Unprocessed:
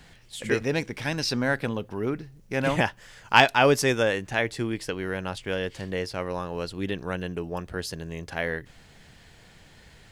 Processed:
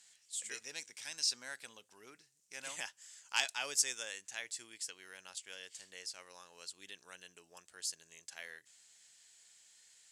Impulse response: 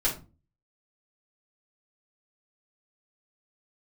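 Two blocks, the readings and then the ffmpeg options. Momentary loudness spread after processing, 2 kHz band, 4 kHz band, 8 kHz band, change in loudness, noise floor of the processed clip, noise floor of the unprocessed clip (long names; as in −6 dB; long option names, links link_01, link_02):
21 LU, −16.5 dB, −8.5 dB, +1.0 dB, −13.0 dB, −73 dBFS, −54 dBFS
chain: -af "bandpass=frequency=7600:width_type=q:width=2.8:csg=0,volume=4.5dB"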